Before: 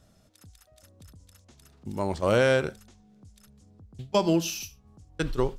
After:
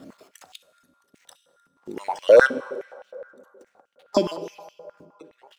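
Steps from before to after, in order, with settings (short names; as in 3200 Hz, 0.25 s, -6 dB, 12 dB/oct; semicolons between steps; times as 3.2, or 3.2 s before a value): random spectral dropouts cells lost 35%; reverse; upward compressor, threshold -34 dBFS; reverse; backlash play -50.5 dBFS; step gate "xxx...x..x" 79 bpm -24 dB; whine 1400 Hz -74 dBFS; on a send at -11 dB: reverb RT60 2.5 s, pre-delay 3 ms; on the sum: stepped high-pass 9.6 Hz 270–2900 Hz; gain +2.5 dB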